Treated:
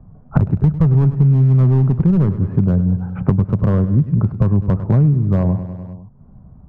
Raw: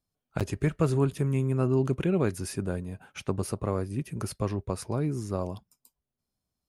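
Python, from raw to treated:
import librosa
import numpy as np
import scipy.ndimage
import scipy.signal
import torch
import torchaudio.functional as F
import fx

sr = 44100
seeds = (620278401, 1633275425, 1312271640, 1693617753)

p1 = fx.rattle_buzz(x, sr, strikes_db=-29.0, level_db=-29.0)
p2 = scipy.signal.sosfilt(scipy.signal.butter(4, 1100.0, 'lowpass', fs=sr, output='sos'), p1)
p3 = np.clip(10.0 ** (20.5 / 20.0) * p2, -1.0, 1.0) / 10.0 ** (20.5 / 20.0)
p4 = fx.low_shelf_res(p3, sr, hz=240.0, db=9.5, q=1.5)
p5 = p4 + fx.echo_feedback(p4, sr, ms=100, feedback_pct=53, wet_db=-14.5, dry=0)
p6 = fx.band_squash(p5, sr, depth_pct=100)
y = F.gain(torch.from_numpy(p6), 5.0).numpy()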